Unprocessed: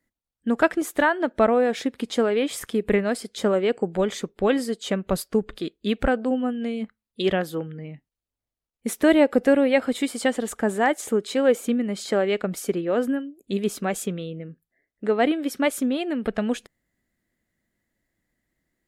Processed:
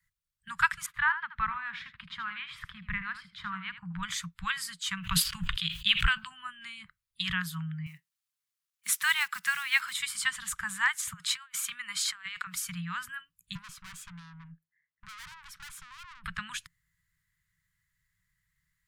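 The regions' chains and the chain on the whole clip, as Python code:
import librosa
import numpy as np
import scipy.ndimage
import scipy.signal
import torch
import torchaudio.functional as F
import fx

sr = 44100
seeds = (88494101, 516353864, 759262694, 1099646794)

y = fx.chain(x, sr, fx.air_absorb(metres=390.0),
    fx.echo_single(ms=78, db=-11.5), at=(0.86, 4.03))
y = fx.chain(y, sr, fx.peak_eq(hz=3000.0, db=13.0, octaves=0.71),
    fx.sustainer(db_per_s=91.0), at=(4.97, 6.27))
y = fx.chain(y, sr, fx.block_float(bits=7),
    fx.highpass(hz=310.0, slope=12),
    fx.high_shelf(hz=2200.0, db=4.5), at=(7.86, 9.96))
y = fx.chain(y, sr, fx.highpass(hz=500.0, slope=12),
    fx.over_compress(threshold_db=-30.0, ratio=-0.5), at=(11.13, 12.55))
y = fx.chain(y, sr, fx.highpass(hz=400.0, slope=12),
    fx.tilt_eq(slope=-4.0),
    fx.tube_stage(drive_db=37.0, bias=0.45), at=(13.55, 16.24))
y = scipy.signal.sosfilt(scipy.signal.cheby1(5, 1.0, [170.0, 990.0], 'bandstop', fs=sr, output='sos'), y)
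y = fx.peak_eq(y, sr, hz=1000.0, db=-3.5, octaves=0.38)
y = F.gain(torch.from_numpy(y), 1.0).numpy()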